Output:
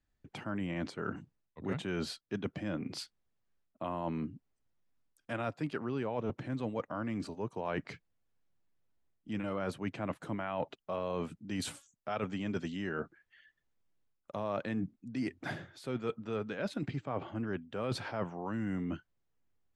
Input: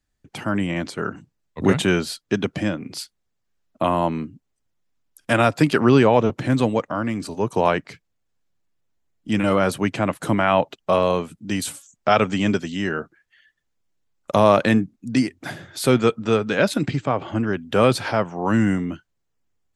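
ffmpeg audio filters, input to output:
-af "aemphasis=mode=reproduction:type=50fm,areverse,acompressor=threshold=0.0355:ratio=6,areverse,volume=0.596"

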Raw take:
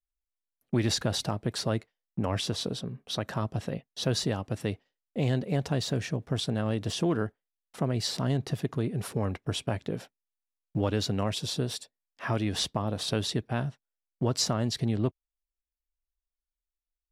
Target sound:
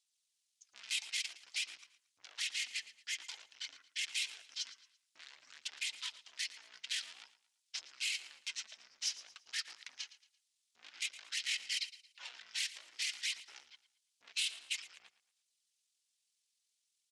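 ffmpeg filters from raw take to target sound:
-af "aeval=exprs='(tanh(89.1*val(0)+0.15)-tanh(0.15))/89.1':c=same,highshelf=f=4200:g=4,acompressor=threshold=0.00501:ratio=2.5,asetrate=24046,aresample=44100,atempo=1.83401,aphaser=in_gain=1:out_gain=1:delay=4.6:decay=0.3:speed=0.52:type=sinusoidal,asuperpass=centerf=5400:order=4:qfactor=0.83,aecho=1:1:113|226|339:0.158|0.0555|0.0194,volume=4.47"

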